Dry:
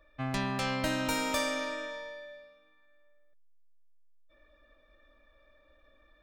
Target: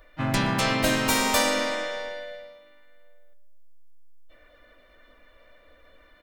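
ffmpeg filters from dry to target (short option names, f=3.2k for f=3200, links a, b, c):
-filter_complex "[0:a]asplit=3[a][b][c];[b]asetrate=37084,aresample=44100,atempo=1.18921,volume=-5dB[d];[c]asetrate=52444,aresample=44100,atempo=0.840896,volume=-10dB[e];[a][d][e]amix=inputs=3:normalize=0,highshelf=f=6.4k:g=7.5,asplit=2[f][g];[g]adelay=121,lowpass=f=2k:p=1,volume=-12.5dB,asplit=2[h][i];[i]adelay=121,lowpass=f=2k:p=1,volume=0.54,asplit=2[j][k];[k]adelay=121,lowpass=f=2k:p=1,volume=0.54,asplit=2[l][m];[m]adelay=121,lowpass=f=2k:p=1,volume=0.54,asplit=2[n][o];[o]adelay=121,lowpass=f=2k:p=1,volume=0.54,asplit=2[p][q];[q]adelay=121,lowpass=f=2k:p=1,volume=0.54[r];[h][j][l][n][p][r]amix=inputs=6:normalize=0[s];[f][s]amix=inputs=2:normalize=0,volume=6dB"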